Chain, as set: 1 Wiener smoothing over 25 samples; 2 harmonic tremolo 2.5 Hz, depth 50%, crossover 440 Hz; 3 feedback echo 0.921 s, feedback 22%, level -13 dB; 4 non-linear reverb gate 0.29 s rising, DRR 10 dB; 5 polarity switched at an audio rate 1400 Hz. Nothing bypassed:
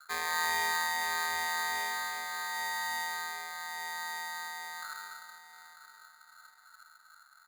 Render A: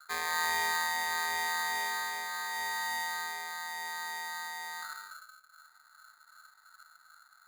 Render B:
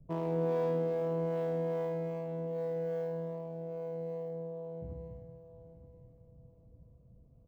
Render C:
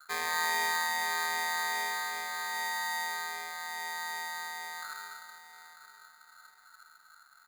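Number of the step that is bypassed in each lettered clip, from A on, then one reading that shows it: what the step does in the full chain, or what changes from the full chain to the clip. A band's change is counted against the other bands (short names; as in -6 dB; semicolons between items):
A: 3, momentary loudness spread change -8 LU; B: 5, momentary loudness spread change -1 LU; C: 1, momentary loudness spread change -2 LU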